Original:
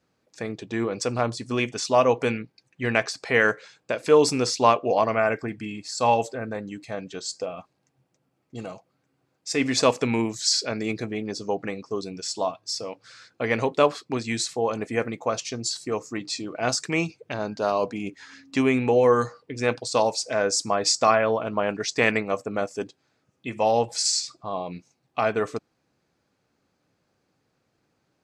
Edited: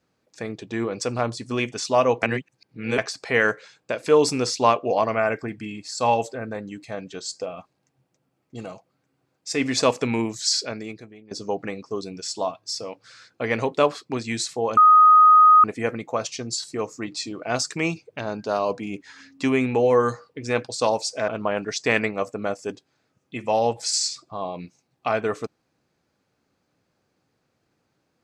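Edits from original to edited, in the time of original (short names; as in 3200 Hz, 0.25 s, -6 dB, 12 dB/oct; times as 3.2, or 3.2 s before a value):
2.23–2.98 reverse
10.6–11.31 fade out quadratic, to -19 dB
14.77 add tone 1250 Hz -9 dBFS 0.87 s
20.41–21.4 cut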